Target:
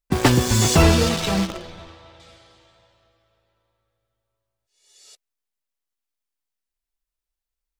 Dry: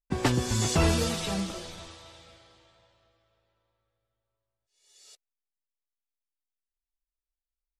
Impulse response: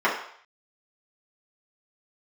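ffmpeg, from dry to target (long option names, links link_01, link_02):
-filter_complex "[0:a]asplit=2[link_01][link_02];[link_02]acrusher=bits=4:mix=0:aa=0.000001,volume=-4.5dB[link_03];[link_01][link_03]amix=inputs=2:normalize=0,asettb=1/sr,asplit=3[link_04][link_05][link_06];[link_04]atrim=end=0.824[link_07];[link_05]atrim=start=0.82:end=2.2,asetpts=PTS-STARTPTS,afade=type=in:duration=0.004:curve=qsin,afade=type=out:start_time=1.376:duration=0.004:curve=qsin,adynamicsmooth=sensitivity=7:basefreq=2800[link_08];[link_06]atrim=start=2.196[link_09];[link_07][link_08]acrossfade=duration=0.004:curve1=hsin:curve2=qsin[link_10];[link_10][link_09]acrossfade=duration=0.004:curve1=qsin:curve2=hsin,volume=5dB"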